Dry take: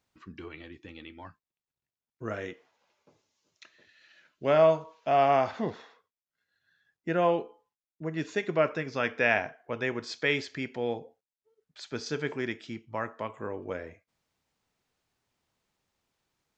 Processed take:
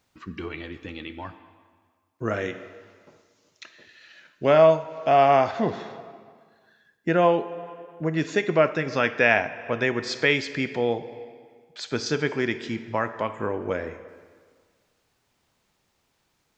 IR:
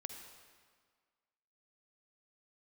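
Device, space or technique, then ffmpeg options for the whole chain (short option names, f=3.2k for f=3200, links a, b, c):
ducked reverb: -filter_complex "[0:a]asplit=3[a][b][c];[1:a]atrim=start_sample=2205[d];[b][d]afir=irnorm=-1:irlink=0[e];[c]apad=whole_len=730743[f];[e][f]sidechaincompress=threshold=-32dB:ratio=4:attack=35:release=480,volume=2.5dB[g];[a][g]amix=inputs=2:normalize=0,volume=3.5dB"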